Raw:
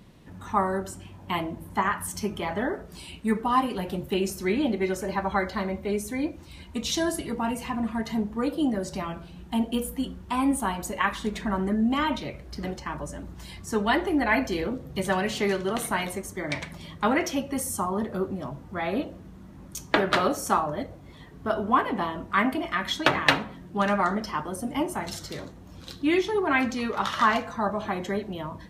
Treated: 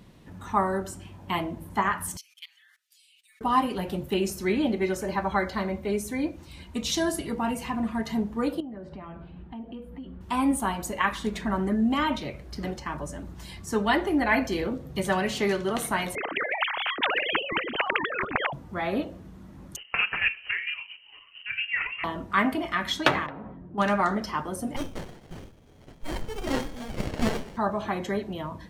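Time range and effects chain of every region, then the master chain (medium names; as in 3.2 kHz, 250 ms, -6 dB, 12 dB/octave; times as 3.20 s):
2.17–3.41 s: inverse Chebyshev high-pass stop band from 580 Hz, stop band 70 dB + level held to a coarse grid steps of 21 dB + comb 6.3 ms, depth 95%
8.60–10.21 s: compression 5:1, threshold -36 dBFS + distance through air 460 m
16.15–18.53 s: formants replaced by sine waves + spectrum-flattening compressor 10:1
19.76–22.04 s: square tremolo 4.4 Hz, depth 60%, duty 30% + frequency inversion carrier 3 kHz
23.26–23.78 s: low-pass 1 kHz + compression 16:1, threshold -34 dBFS
24.76–27.57 s: high-pass 190 Hz + frequency inversion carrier 3.5 kHz + sliding maximum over 33 samples
whole clip: none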